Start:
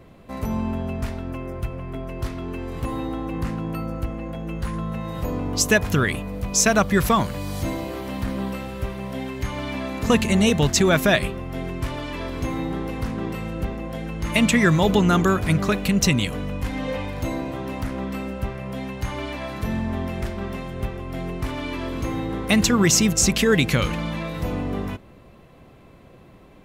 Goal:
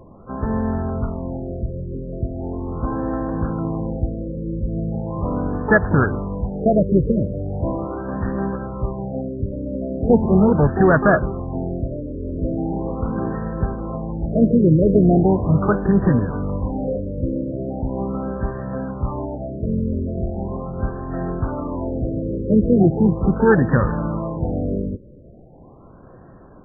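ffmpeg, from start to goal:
-filter_complex "[0:a]asplit=3[a][b][c];[b]asetrate=35002,aresample=44100,atempo=1.25992,volume=-12dB[d];[c]asetrate=88200,aresample=44100,atempo=0.5,volume=-10dB[e];[a][d][e]amix=inputs=3:normalize=0,afftfilt=real='re*lt(b*sr/1024,600*pow(1900/600,0.5+0.5*sin(2*PI*0.39*pts/sr)))':imag='im*lt(b*sr/1024,600*pow(1900/600,0.5+0.5*sin(2*PI*0.39*pts/sr)))':win_size=1024:overlap=0.75,volume=3.5dB"

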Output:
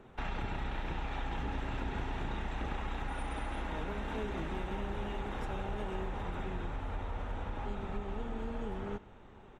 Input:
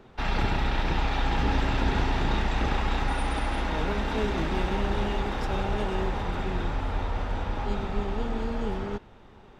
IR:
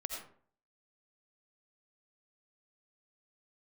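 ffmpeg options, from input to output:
-filter_complex "[0:a]equalizer=f=4.8k:w=2.6:g=-12,acompressor=threshold=-32dB:ratio=3,asplit=2[a][b];[b]aecho=0:1:80|160|240:0.0891|0.0428|0.0205[c];[a][c]amix=inputs=2:normalize=0,volume=-3dB" -ar 48000 -c:a libmp3lame -b:a 56k

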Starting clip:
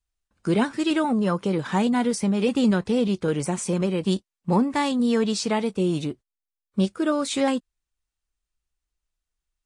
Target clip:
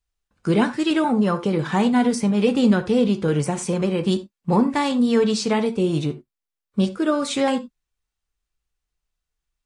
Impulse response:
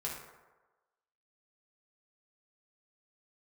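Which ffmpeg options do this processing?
-filter_complex "[0:a]asplit=2[a][b];[1:a]atrim=start_sample=2205,atrim=end_sample=4410,lowpass=7k[c];[b][c]afir=irnorm=-1:irlink=0,volume=-5.5dB[d];[a][d]amix=inputs=2:normalize=0"

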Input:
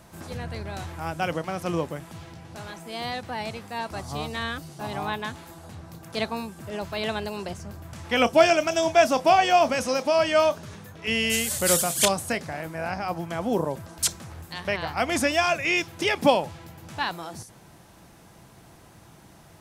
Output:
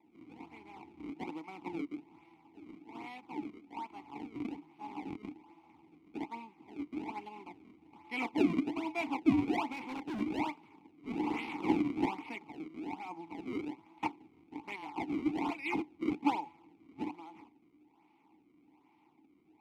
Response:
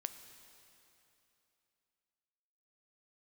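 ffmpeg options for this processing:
-filter_complex "[0:a]lowshelf=f=310:g=-12,asplit=2[a][b];[b]aeval=exprs='sgn(val(0))*max(abs(val(0))-0.00708,0)':c=same,volume=-7.5dB[c];[a][c]amix=inputs=2:normalize=0,acrusher=samples=29:mix=1:aa=0.000001:lfo=1:lforange=46.4:lforate=1.2,asplit=3[d][e][f];[d]bandpass=f=300:t=q:w=8,volume=0dB[g];[e]bandpass=f=870:t=q:w=8,volume=-6dB[h];[f]bandpass=f=2.24k:t=q:w=8,volume=-9dB[i];[g][h][i]amix=inputs=3:normalize=0,asettb=1/sr,asplit=3[j][k][l];[j]atrim=end=9.724[m];[k]atrim=start=9.72:end=10.21,asetpts=PTS-STARTPTS,afade=t=in:d=0.004:c=qsin,afade=t=out:st=0.486:d=0.004:c=qsin,asoftclip=type=hard:threshold=-36.5dB[n];[l]atrim=start=10.206[o];[m][n]acrossfade=d=0.004:c1=hsin:c2=qsin[p];[p][o]acrossfade=d=0.004:c1=qsin:c2=hsin"

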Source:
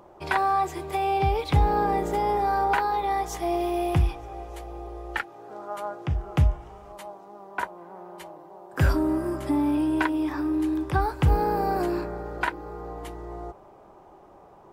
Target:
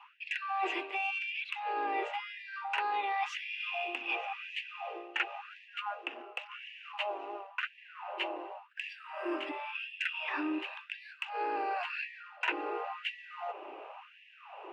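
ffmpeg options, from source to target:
-filter_complex "[0:a]lowpass=f=2.7k:t=q:w=13,acrossover=split=160[a][b];[a]acrusher=bits=5:mix=0:aa=0.5[c];[b]aeval=exprs='0.668*(cos(1*acos(clip(val(0)/0.668,-1,1)))-cos(1*PI/2))+0.0299*(cos(5*acos(clip(val(0)/0.668,-1,1)))-cos(5*PI/2))':c=same[d];[c][d]amix=inputs=2:normalize=0,adynamicequalizer=threshold=0.0141:dfrequency=360:dqfactor=0.89:tfrequency=360:tqfactor=0.89:attack=5:release=100:ratio=0.375:range=3:mode=cutabove:tftype=bell,areverse,acompressor=threshold=-32dB:ratio=20,areverse,afftfilt=real='re*gte(b*sr/1024,250*pow(1700/250,0.5+0.5*sin(2*PI*0.93*pts/sr)))':imag='im*gte(b*sr/1024,250*pow(1700/250,0.5+0.5*sin(2*PI*0.93*pts/sr)))':win_size=1024:overlap=0.75,volume=2.5dB"

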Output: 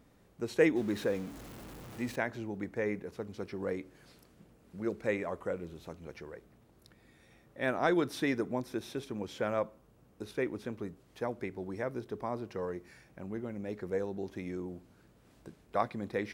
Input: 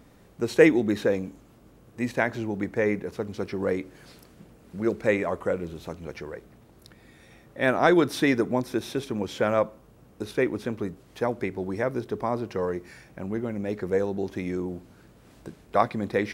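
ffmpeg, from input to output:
-filter_complex "[0:a]asettb=1/sr,asplit=3[a][b][c];[a]atrim=end=0.764[d];[b]atrim=start=0.76:end=2.16,asetpts=PTS-STARTPTS,afade=t=in:d=0.004:c=qsin,afade=t=out:st=1.396:d=0.004:c=qsin,aeval=exprs='val(0)+0.5*0.02*sgn(val(0))':c=same[e];[c]atrim=start=2.156[f];[d][e]acrossfade=d=0.004:c1=hsin:c2=qsin[g];[g][f]acrossfade=d=0.004:c1=qsin:c2=hsin,volume=-9dB"

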